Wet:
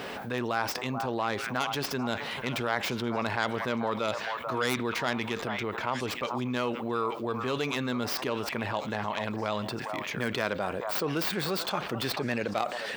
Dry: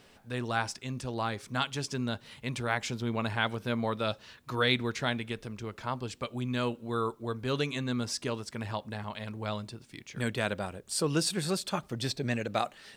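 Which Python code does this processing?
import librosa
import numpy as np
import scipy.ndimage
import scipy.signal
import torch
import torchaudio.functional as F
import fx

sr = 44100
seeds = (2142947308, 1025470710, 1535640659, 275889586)

p1 = fx.tracing_dist(x, sr, depth_ms=0.2)
p2 = fx.highpass(p1, sr, hz=450.0, slope=6)
p3 = fx.peak_eq(p2, sr, hz=8200.0, db=-14.5, octaves=2.4)
p4 = p3 + fx.echo_stepped(p3, sr, ms=436, hz=890.0, octaves=1.4, feedback_pct=70, wet_db=-10.0, dry=0)
p5 = fx.dynamic_eq(p4, sr, hz=5100.0, q=0.77, threshold_db=-53.0, ratio=4.0, max_db=5)
y = fx.env_flatten(p5, sr, amount_pct=70)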